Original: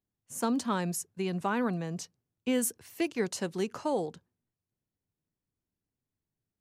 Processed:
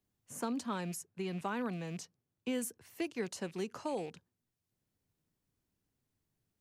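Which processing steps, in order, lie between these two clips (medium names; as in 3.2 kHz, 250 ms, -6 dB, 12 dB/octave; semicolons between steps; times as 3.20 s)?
rattle on loud lows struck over -46 dBFS, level -40 dBFS; three bands compressed up and down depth 40%; trim -7 dB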